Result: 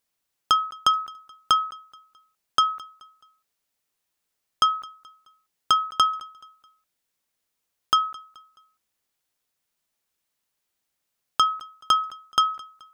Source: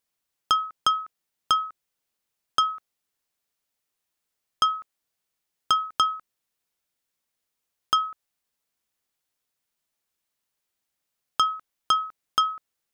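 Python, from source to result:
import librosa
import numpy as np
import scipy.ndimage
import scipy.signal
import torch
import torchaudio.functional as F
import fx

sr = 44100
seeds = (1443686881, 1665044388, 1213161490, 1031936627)

y = fx.echo_feedback(x, sr, ms=214, feedback_pct=41, wet_db=-22.5)
y = F.gain(torch.from_numpy(y), 2.0).numpy()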